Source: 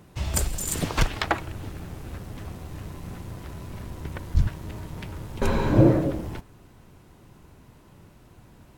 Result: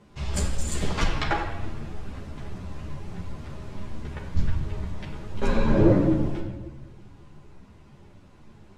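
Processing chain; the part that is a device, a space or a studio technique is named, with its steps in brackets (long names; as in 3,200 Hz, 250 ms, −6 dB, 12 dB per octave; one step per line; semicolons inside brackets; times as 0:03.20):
rectangular room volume 810 cubic metres, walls mixed, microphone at 1.3 metres
string-machine ensemble chorus (string-ensemble chorus; low-pass filter 7,000 Hz 12 dB per octave)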